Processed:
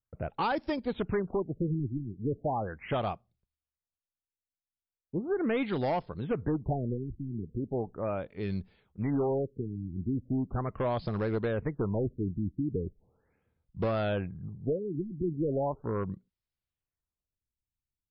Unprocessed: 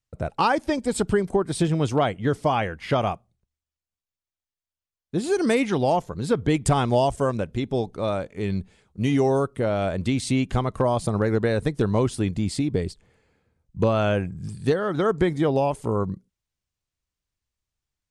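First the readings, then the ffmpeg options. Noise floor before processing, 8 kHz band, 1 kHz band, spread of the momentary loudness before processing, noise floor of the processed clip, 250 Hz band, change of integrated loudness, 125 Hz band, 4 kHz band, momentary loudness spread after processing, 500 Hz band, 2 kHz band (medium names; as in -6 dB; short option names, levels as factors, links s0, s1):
under -85 dBFS, under -40 dB, -10.0 dB, 7 LU, under -85 dBFS, -8.0 dB, -9.0 dB, -8.0 dB, -14.0 dB, 7 LU, -9.0 dB, -10.5 dB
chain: -af "asoftclip=type=hard:threshold=0.141,afftfilt=real='re*lt(b*sr/1024,370*pow(5600/370,0.5+0.5*sin(2*PI*0.38*pts/sr)))':imag='im*lt(b*sr/1024,370*pow(5600/370,0.5+0.5*sin(2*PI*0.38*pts/sr)))':win_size=1024:overlap=0.75,volume=0.447"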